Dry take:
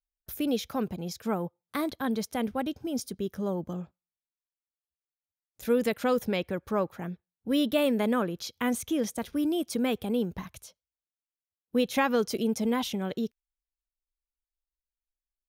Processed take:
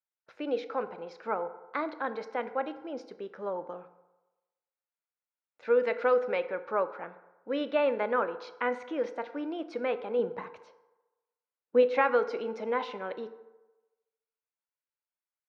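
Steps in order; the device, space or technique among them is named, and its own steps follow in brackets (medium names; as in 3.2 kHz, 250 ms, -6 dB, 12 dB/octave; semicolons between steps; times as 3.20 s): 10.19–11.83 s: bass shelf 450 Hz +8.5 dB; phone earpiece (cabinet simulation 450–3600 Hz, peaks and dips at 510 Hz +7 dB, 920 Hz +6 dB, 1.4 kHz +7 dB, 2.2 kHz +3 dB, 3.3 kHz -9 dB); FDN reverb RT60 1.1 s, low-frequency decay 0.7×, high-frequency decay 0.5×, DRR 10 dB; trim -2.5 dB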